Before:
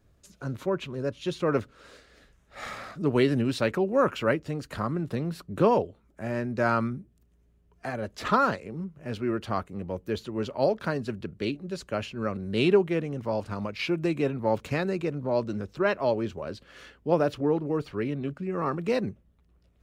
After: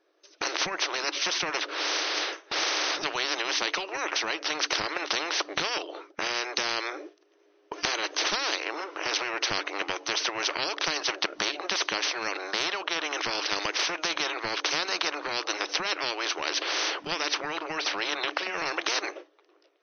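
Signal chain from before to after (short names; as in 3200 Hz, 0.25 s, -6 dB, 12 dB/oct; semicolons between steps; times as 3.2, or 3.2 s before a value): FFT band-pass 300–6300 Hz; AGC gain up to 14 dB; gate with hold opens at -41 dBFS; compressor 2:1, threshold -31 dBFS, peak gain reduction 13.5 dB; spectral compressor 10:1; gain +4.5 dB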